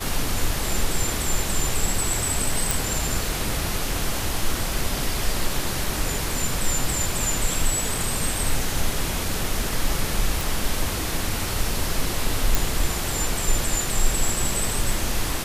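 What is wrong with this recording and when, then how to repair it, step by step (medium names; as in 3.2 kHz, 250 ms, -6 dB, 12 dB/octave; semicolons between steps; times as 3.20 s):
2.71 s: pop
10.41 s: pop
12.55 s: pop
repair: de-click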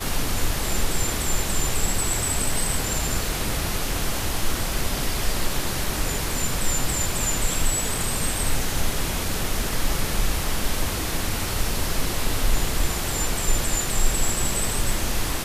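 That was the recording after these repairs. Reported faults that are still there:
nothing left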